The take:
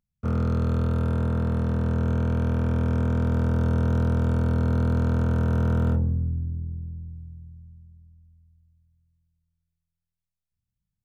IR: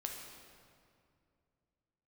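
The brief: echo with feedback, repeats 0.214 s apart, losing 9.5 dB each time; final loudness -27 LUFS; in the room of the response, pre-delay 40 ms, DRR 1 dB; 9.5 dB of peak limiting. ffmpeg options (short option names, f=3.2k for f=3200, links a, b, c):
-filter_complex "[0:a]alimiter=limit=-24dB:level=0:latency=1,aecho=1:1:214|428|642|856:0.335|0.111|0.0365|0.012,asplit=2[a][b];[1:a]atrim=start_sample=2205,adelay=40[c];[b][c]afir=irnorm=-1:irlink=0,volume=-0.5dB[d];[a][d]amix=inputs=2:normalize=0,volume=3dB"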